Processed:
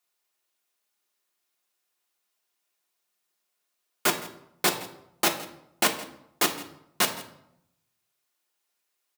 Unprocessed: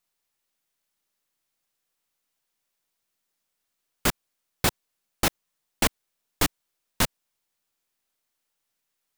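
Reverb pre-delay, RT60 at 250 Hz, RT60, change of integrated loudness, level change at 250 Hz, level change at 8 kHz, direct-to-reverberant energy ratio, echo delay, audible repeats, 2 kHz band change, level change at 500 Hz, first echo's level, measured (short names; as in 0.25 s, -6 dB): 3 ms, 0.95 s, 0.80 s, +0.5 dB, -2.5 dB, +1.0 dB, 3.0 dB, 0.165 s, 1, +1.5 dB, +1.5 dB, -19.0 dB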